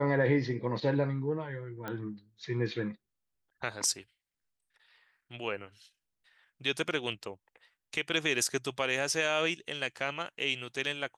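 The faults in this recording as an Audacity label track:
1.880000	1.880000	pop -23 dBFS

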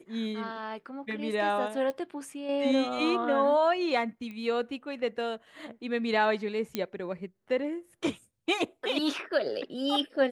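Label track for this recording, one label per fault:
1.900000	1.900000	pop -22 dBFS
4.310000	4.310000	pop -30 dBFS
6.750000	6.750000	pop -15 dBFS

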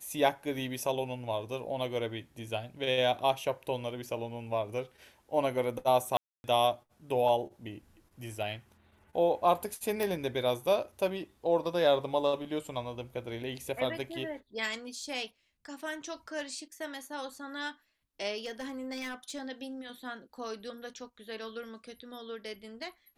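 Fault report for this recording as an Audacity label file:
6.170000	6.440000	gap 0.271 s
10.030000	10.030000	pop
18.440000	19.420000	clipped -33 dBFS

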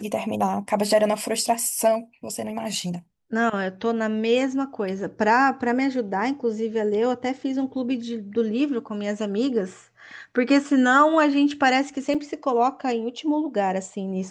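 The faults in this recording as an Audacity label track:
12.140000	12.150000	gap 6.2 ms

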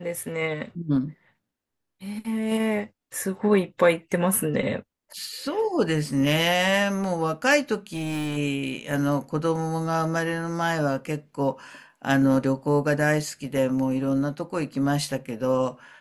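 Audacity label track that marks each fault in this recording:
7.930000	8.380000	clipped -25 dBFS

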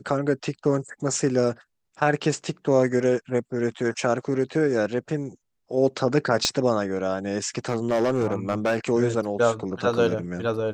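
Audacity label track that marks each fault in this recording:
6.450000	6.450000	pop -7 dBFS
7.580000	8.840000	clipped -17.5 dBFS

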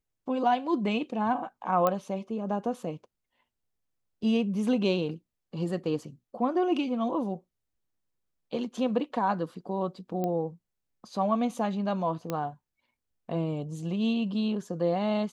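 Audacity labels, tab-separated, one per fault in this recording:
1.870000	1.870000	pop -13 dBFS
10.240000	10.240000	pop -19 dBFS
12.300000	12.300000	pop -17 dBFS

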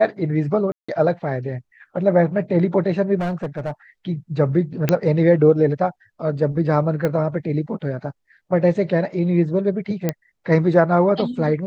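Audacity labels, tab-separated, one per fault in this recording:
0.720000	0.890000	gap 0.165 s
3.190000	3.710000	clipped -20 dBFS
4.890000	4.890000	pop -4 dBFS
7.050000	7.050000	pop -10 dBFS
10.090000	10.090000	pop -7 dBFS

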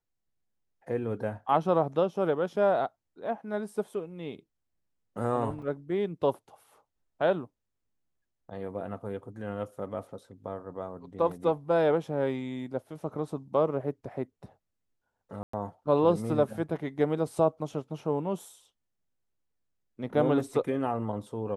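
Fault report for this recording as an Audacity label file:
5.620000	5.620000	gap 4.4 ms
15.430000	15.530000	gap 0.104 s

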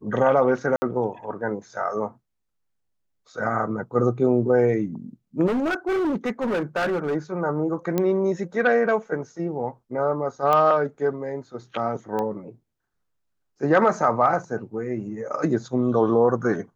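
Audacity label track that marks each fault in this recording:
0.760000	0.820000	gap 60 ms
5.460000	7.160000	clipped -20.5 dBFS
7.980000	7.980000	pop -10 dBFS
10.530000	10.530000	pop -10 dBFS
12.190000	12.190000	pop -16 dBFS

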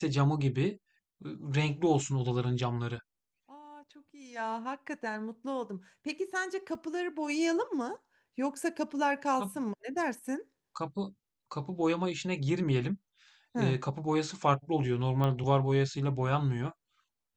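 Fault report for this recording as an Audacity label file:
6.750000	6.750000	gap 2.7 ms
15.240000	15.240000	pop -20 dBFS

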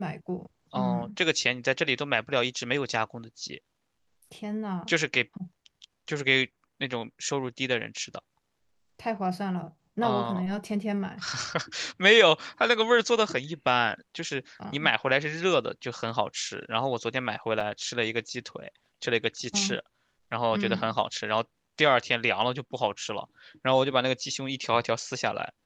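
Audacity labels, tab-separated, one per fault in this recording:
17.600000	17.600000	gap 4.8 ms

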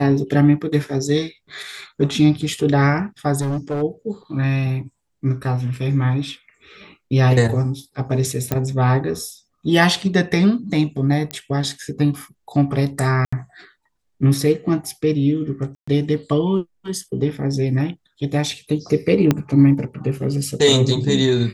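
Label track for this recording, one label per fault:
3.400000	3.830000	clipped -19 dBFS
8.520000	8.520000	pop -6 dBFS
11.310000	11.310000	pop -10 dBFS
13.250000	13.320000	gap 75 ms
15.750000	15.880000	gap 0.125 s
19.310000	19.310000	pop -3 dBFS

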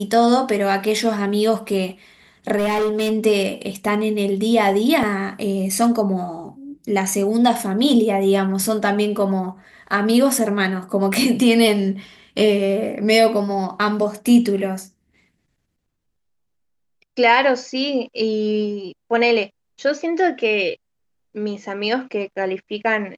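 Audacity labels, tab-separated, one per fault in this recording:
2.570000	3.120000	clipped -16.5 dBFS
5.030000	5.030000	gap 3.5 ms
11.140000	11.140000	pop

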